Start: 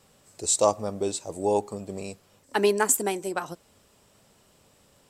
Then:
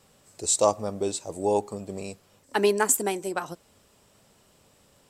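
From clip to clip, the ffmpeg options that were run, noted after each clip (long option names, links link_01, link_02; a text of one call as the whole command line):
ffmpeg -i in.wav -af anull out.wav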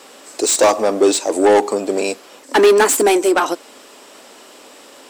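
ffmpeg -i in.wav -filter_complex "[0:a]asplit=2[link_01][link_02];[link_02]highpass=frequency=720:poles=1,volume=26dB,asoftclip=type=tanh:threshold=-7dB[link_03];[link_01][link_03]amix=inputs=2:normalize=0,lowpass=frequency=5000:poles=1,volume=-6dB,lowshelf=frequency=200:width_type=q:width=3:gain=-10.5,volume=2dB" out.wav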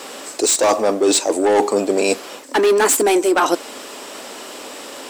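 ffmpeg -i in.wav -af "areverse,acompressor=threshold=-22dB:ratio=6,areverse,acrusher=bits=10:mix=0:aa=0.000001,volume=8.5dB" out.wav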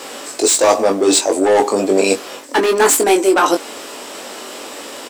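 ffmpeg -i in.wav -filter_complex "[0:a]asplit=2[link_01][link_02];[link_02]adelay=21,volume=-5dB[link_03];[link_01][link_03]amix=inputs=2:normalize=0,volume=1.5dB" out.wav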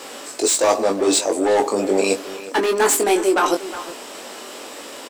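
ffmpeg -i in.wav -filter_complex "[0:a]asplit=2[link_01][link_02];[link_02]adelay=360,highpass=300,lowpass=3400,asoftclip=type=hard:threshold=-10.5dB,volume=-12dB[link_03];[link_01][link_03]amix=inputs=2:normalize=0,volume=-4.5dB" out.wav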